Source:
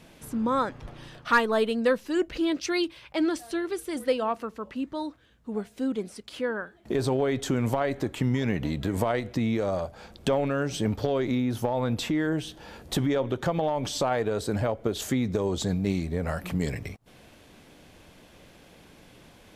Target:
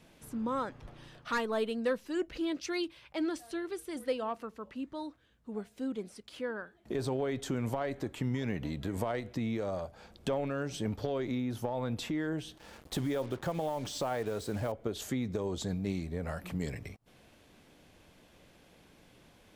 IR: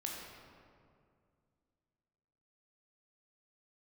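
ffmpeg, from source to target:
-filter_complex "[0:a]acrossover=split=750|4700[s0][s1][s2];[s1]asoftclip=type=tanh:threshold=0.0891[s3];[s0][s3][s2]amix=inputs=3:normalize=0,asettb=1/sr,asplit=3[s4][s5][s6];[s4]atrim=end=12.574[s7];[s5]atrim=start=12.57:end=14.72,asetpts=PTS-STARTPTS,afade=t=in:d=0.004:c=qsin,afade=t=out:st=2.146:d=0.004:c=qsin,acrusher=bits=6:mix=0:aa=0.5[s8];[s6]atrim=start=14.716[s9];[s7][s8]acrossfade=d=0.004:c1=hsin:c2=qsin[s10];[s10][s9]acrossfade=d=0.004:c1=qsin:c2=hsin,volume=0.422"

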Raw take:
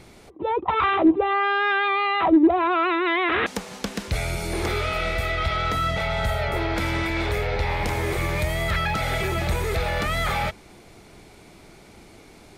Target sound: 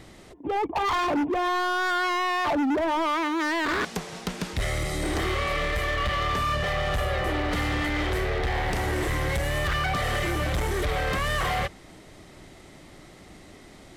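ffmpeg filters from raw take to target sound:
-af "asoftclip=type=hard:threshold=0.075,asetrate=39690,aresample=44100"

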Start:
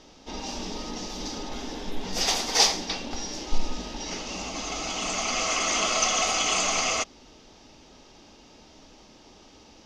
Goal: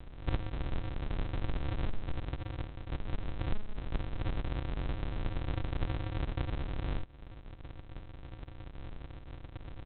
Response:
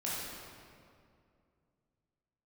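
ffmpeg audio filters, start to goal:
-af "equalizer=f=350:w=3.3:g=-12,acompressor=threshold=0.0126:ratio=12,aresample=8000,acrusher=samples=38:mix=1:aa=0.000001,aresample=44100,volume=3.16"

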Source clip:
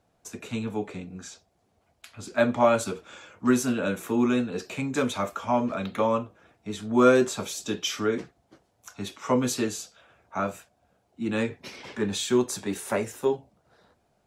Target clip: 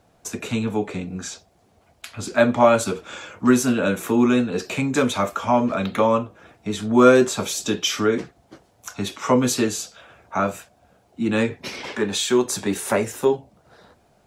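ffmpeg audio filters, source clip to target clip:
-filter_complex "[0:a]asettb=1/sr,asplit=3[s0][s1][s2];[s0]atrim=end=11.854[s3];[s1]atrim=start=11.85:end=12.45,asetpts=PTS-STARTPTS,afade=t=in:d=0.004:c=qsin,afade=t=out:st=0.596:d=0.004:c=qsin,bass=f=250:g=-8,treble=f=4000:g=-1[s4];[s2]atrim=start=12.446[s5];[s3][s4]acrossfade=d=0.004:c1=hsin:c2=qsin[s6];[s6][s5]acrossfade=d=0.004:c1=qsin:c2=hsin,asplit=2[s7][s8];[s8]acompressor=threshold=0.0158:ratio=6,volume=0.891[s9];[s7][s9]amix=inputs=2:normalize=0,volume=1.68"

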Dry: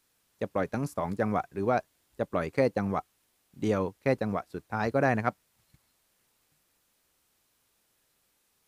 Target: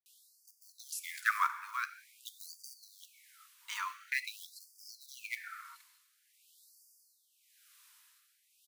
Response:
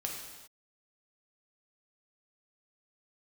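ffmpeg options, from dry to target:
-filter_complex "[0:a]tremolo=f=0.9:d=0.73,acrusher=bits=8:mode=log:mix=0:aa=0.000001,acrossover=split=660[s0][s1];[s1]adelay=60[s2];[s0][s2]amix=inputs=2:normalize=0,asplit=2[s3][s4];[1:a]atrim=start_sample=2205[s5];[s4][s5]afir=irnorm=-1:irlink=0,volume=0.447[s6];[s3][s6]amix=inputs=2:normalize=0,afftfilt=real='re*gte(b*sr/1024,870*pow(4600/870,0.5+0.5*sin(2*PI*0.47*pts/sr)))':imag='im*gte(b*sr/1024,870*pow(4600/870,0.5+0.5*sin(2*PI*0.47*pts/sr)))':win_size=1024:overlap=0.75,volume=2.37"

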